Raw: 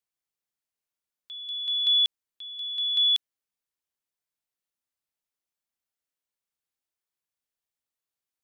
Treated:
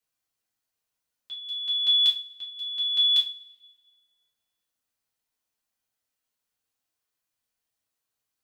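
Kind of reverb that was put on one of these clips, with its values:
coupled-rooms reverb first 0.3 s, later 1.5 s, from −26 dB, DRR −4.5 dB

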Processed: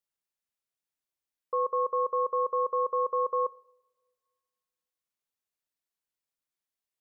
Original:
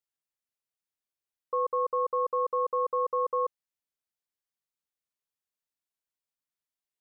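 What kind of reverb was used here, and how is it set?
coupled-rooms reverb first 0.58 s, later 1.9 s, from −19 dB, DRR 17.5 dB

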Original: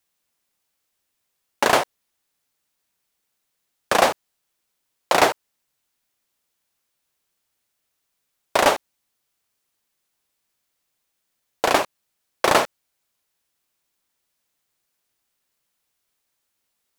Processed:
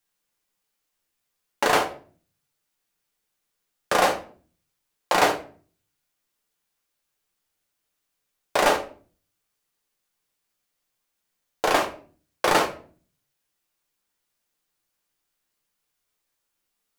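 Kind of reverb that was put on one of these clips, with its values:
rectangular room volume 32 cubic metres, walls mixed, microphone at 0.42 metres
level −4.5 dB

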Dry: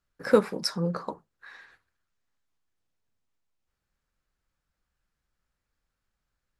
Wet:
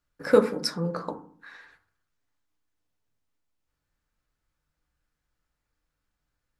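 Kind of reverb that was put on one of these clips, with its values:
feedback delay network reverb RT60 0.51 s, low-frequency decay 1.4×, high-frequency decay 0.3×, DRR 6.5 dB

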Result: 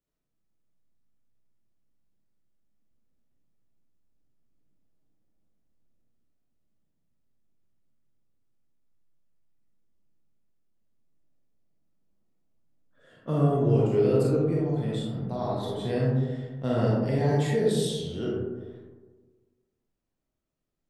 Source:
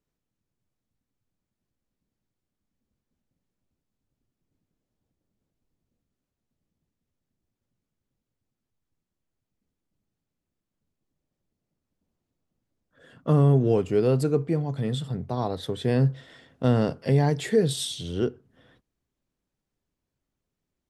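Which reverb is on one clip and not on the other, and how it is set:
comb and all-pass reverb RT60 1.4 s, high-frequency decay 0.3×, pre-delay 0 ms, DRR −5 dB
level −8 dB

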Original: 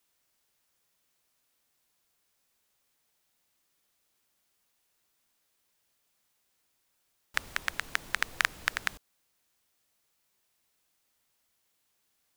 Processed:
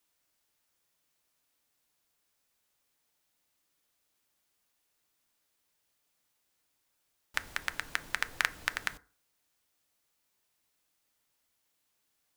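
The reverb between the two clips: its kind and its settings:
feedback delay network reverb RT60 0.41 s, low-frequency decay 1×, high-frequency decay 0.4×, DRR 12.5 dB
level −2.5 dB

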